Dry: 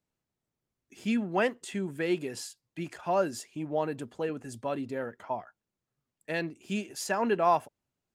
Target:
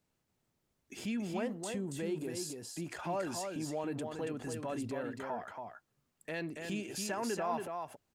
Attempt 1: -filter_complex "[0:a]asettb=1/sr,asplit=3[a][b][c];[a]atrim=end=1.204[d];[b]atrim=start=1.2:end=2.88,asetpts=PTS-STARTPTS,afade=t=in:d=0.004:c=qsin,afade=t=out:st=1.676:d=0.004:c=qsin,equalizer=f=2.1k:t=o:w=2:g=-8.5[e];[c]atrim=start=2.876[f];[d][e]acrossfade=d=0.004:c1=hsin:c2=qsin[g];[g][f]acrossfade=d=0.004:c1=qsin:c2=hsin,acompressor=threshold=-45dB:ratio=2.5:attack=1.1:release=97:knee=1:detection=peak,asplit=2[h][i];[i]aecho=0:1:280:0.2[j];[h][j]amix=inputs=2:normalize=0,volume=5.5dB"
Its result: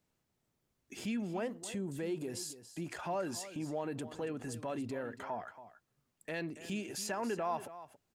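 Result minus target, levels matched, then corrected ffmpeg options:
echo-to-direct -9 dB
-filter_complex "[0:a]asettb=1/sr,asplit=3[a][b][c];[a]atrim=end=1.204[d];[b]atrim=start=1.2:end=2.88,asetpts=PTS-STARTPTS,afade=t=in:d=0.004:c=qsin,afade=t=out:st=1.676:d=0.004:c=qsin,equalizer=f=2.1k:t=o:w=2:g=-8.5[e];[c]atrim=start=2.876[f];[d][e]acrossfade=d=0.004:c1=hsin:c2=qsin[g];[g][f]acrossfade=d=0.004:c1=qsin:c2=hsin,acompressor=threshold=-45dB:ratio=2.5:attack=1.1:release=97:knee=1:detection=peak,asplit=2[h][i];[i]aecho=0:1:280:0.562[j];[h][j]amix=inputs=2:normalize=0,volume=5.5dB"

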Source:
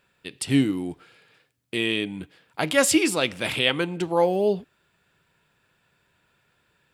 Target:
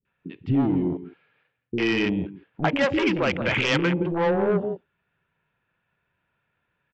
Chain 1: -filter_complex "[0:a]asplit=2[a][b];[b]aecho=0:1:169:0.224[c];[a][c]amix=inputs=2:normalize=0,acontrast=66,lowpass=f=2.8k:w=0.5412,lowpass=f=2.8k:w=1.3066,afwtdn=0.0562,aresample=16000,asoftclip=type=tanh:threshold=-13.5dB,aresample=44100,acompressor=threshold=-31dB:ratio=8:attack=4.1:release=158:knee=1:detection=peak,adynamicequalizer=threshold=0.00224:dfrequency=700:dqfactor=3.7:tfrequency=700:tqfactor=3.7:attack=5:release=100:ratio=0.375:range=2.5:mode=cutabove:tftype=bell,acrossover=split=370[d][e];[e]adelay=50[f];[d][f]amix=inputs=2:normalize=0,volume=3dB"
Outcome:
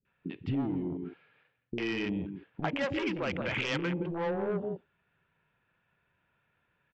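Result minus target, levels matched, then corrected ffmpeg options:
compressor: peak gain reduction +10 dB
-filter_complex "[0:a]asplit=2[a][b];[b]aecho=0:1:169:0.224[c];[a][c]amix=inputs=2:normalize=0,acontrast=66,lowpass=f=2.8k:w=0.5412,lowpass=f=2.8k:w=1.3066,afwtdn=0.0562,aresample=16000,asoftclip=type=tanh:threshold=-13.5dB,aresample=44100,acompressor=threshold=-19.5dB:ratio=8:attack=4.1:release=158:knee=1:detection=peak,adynamicequalizer=threshold=0.00224:dfrequency=700:dqfactor=3.7:tfrequency=700:tqfactor=3.7:attack=5:release=100:ratio=0.375:range=2.5:mode=cutabove:tftype=bell,acrossover=split=370[d][e];[e]adelay=50[f];[d][f]amix=inputs=2:normalize=0,volume=3dB"

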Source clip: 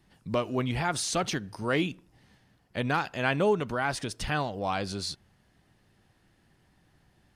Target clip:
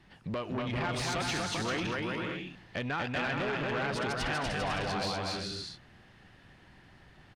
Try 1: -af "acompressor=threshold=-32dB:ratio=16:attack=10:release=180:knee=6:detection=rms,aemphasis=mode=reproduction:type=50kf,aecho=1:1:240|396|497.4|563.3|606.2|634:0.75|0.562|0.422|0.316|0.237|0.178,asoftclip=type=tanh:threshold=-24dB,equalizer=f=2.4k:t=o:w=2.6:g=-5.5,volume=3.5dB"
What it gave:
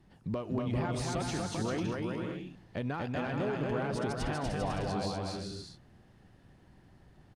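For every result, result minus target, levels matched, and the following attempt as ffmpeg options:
soft clip: distortion -12 dB; 2000 Hz band -6.5 dB
-af "acompressor=threshold=-32dB:ratio=16:attack=10:release=180:knee=6:detection=rms,aemphasis=mode=reproduction:type=50kf,aecho=1:1:240|396|497.4|563.3|606.2|634:0.75|0.562|0.422|0.316|0.237|0.178,asoftclip=type=tanh:threshold=-33dB,equalizer=f=2.4k:t=o:w=2.6:g=-5.5,volume=3.5dB"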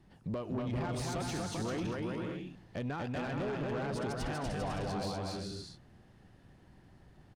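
2000 Hz band -6.5 dB
-af "acompressor=threshold=-32dB:ratio=16:attack=10:release=180:knee=6:detection=rms,aemphasis=mode=reproduction:type=50kf,aecho=1:1:240|396|497.4|563.3|606.2|634:0.75|0.562|0.422|0.316|0.237|0.178,asoftclip=type=tanh:threshold=-33dB,equalizer=f=2.4k:t=o:w=2.6:g=6.5,volume=3.5dB"

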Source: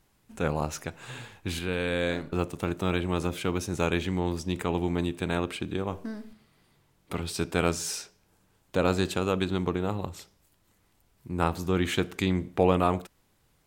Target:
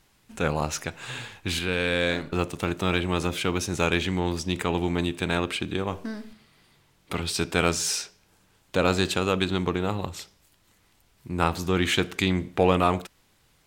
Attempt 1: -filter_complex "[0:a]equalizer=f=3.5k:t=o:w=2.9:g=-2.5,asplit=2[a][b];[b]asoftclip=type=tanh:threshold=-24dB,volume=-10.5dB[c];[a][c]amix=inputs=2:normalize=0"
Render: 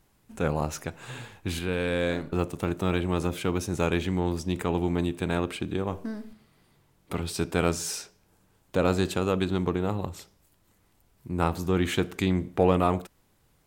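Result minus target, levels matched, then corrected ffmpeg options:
4000 Hz band -6.0 dB
-filter_complex "[0:a]equalizer=f=3.5k:t=o:w=2.9:g=6,asplit=2[a][b];[b]asoftclip=type=tanh:threshold=-24dB,volume=-10.5dB[c];[a][c]amix=inputs=2:normalize=0"

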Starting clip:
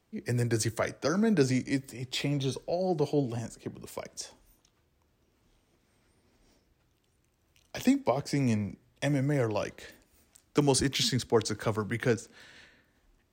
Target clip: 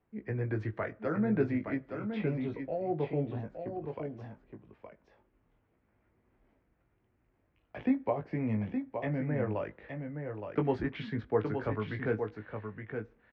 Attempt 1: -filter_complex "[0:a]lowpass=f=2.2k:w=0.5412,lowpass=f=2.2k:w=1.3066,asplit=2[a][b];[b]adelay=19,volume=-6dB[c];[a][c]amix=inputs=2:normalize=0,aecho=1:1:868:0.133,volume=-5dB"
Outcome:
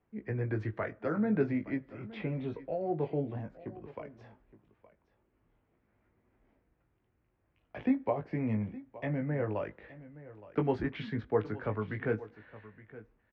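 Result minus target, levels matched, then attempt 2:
echo-to-direct -11 dB
-filter_complex "[0:a]lowpass=f=2.2k:w=0.5412,lowpass=f=2.2k:w=1.3066,asplit=2[a][b];[b]adelay=19,volume=-6dB[c];[a][c]amix=inputs=2:normalize=0,aecho=1:1:868:0.473,volume=-5dB"

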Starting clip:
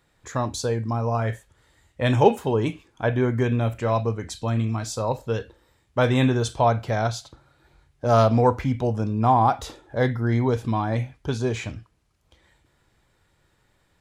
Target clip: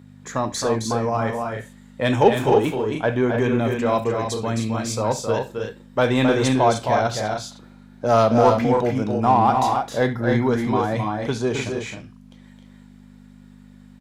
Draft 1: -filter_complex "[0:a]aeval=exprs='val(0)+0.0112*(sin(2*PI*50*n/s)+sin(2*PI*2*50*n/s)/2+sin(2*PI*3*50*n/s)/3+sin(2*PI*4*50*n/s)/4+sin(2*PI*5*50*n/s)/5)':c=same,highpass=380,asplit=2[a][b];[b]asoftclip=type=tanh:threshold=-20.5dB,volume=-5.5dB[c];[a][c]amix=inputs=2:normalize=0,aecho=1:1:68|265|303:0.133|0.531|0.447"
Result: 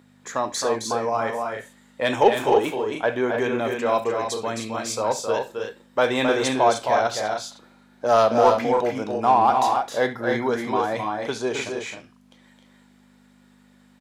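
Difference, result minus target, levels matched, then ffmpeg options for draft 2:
125 Hz band -11.5 dB
-filter_complex "[0:a]aeval=exprs='val(0)+0.0112*(sin(2*PI*50*n/s)+sin(2*PI*2*50*n/s)/2+sin(2*PI*3*50*n/s)/3+sin(2*PI*4*50*n/s)/4+sin(2*PI*5*50*n/s)/5)':c=same,highpass=160,asplit=2[a][b];[b]asoftclip=type=tanh:threshold=-20.5dB,volume=-5.5dB[c];[a][c]amix=inputs=2:normalize=0,aecho=1:1:68|265|303:0.133|0.531|0.447"

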